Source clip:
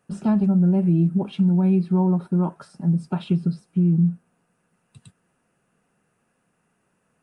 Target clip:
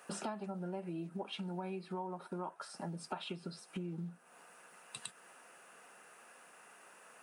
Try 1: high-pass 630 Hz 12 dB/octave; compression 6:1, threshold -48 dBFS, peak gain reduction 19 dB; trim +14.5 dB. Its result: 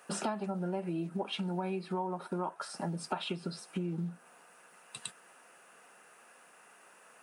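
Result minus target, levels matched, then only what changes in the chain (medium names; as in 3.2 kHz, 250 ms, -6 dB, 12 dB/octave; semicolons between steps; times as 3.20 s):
compression: peak gain reduction -6 dB
change: compression 6:1, threshold -55.5 dBFS, peak gain reduction 25.5 dB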